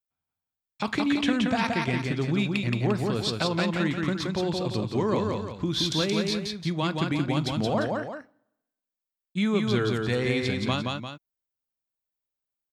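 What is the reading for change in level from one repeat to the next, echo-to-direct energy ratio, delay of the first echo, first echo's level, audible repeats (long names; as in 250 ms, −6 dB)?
−7.0 dB, −2.0 dB, 174 ms, −3.0 dB, 2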